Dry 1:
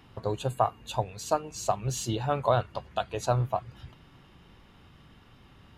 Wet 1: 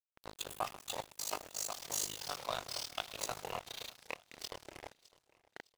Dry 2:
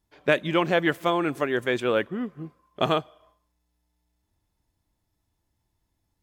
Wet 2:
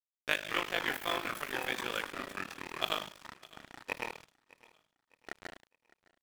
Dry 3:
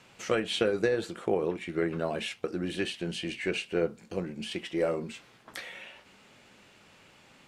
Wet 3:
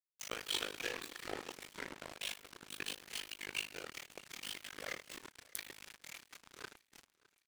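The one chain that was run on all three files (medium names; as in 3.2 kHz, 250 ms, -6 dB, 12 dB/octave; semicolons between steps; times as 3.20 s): high-pass 44 Hz; pre-emphasis filter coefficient 0.97; gated-style reverb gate 420 ms falling, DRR 4.5 dB; AM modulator 51 Hz, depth 65%; ever faster or slower copies 126 ms, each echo -5 st, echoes 2, each echo -6 dB; in parallel at -2.5 dB: gain riding within 4 dB 0.5 s; on the sum: crossover distortion -43.5 dBFS; on a send: feedback delay 609 ms, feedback 41%, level -23 dB; on the sum: dynamic bell 8 kHz, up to -5 dB, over -58 dBFS, Q 0.71; trim +6 dB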